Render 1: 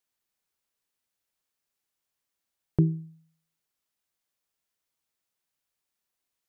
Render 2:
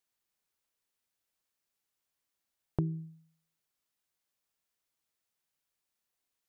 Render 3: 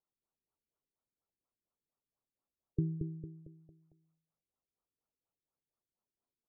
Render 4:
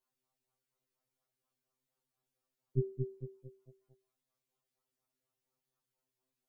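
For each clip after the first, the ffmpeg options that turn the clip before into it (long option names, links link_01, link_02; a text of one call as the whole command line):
ffmpeg -i in.wav -af "acompressor=threshold=-26dB:ratio=6,volume=-1.5dB" out.wav
ffmpeg -i in.wav -af "aecho=1:1:226|452|678|904|1130:0.562|0.225|0.09|0.036|0.0144,afftfilt=real='re*lt(b*sr/1024,420*pow(1500/420,0.5+0.5*sin(2*PI*4.2*pts/sr)))':imag='im*lt(b*sr/1024,420*pow(1500/420,0.5+0.5*sin(2*PI*4.2*pts/sr)))':win_size=1024:overlap=0.75,volume=-1.5dB" out.wav
ffmpeg -i in.wav -af "afftfilt=real='re*2.45*eq(mod(b,6),0)':imag='im*2.45*eq(mod(b,6),0)':win_size=2048:overlap=0.75,volume=7dB" out.wav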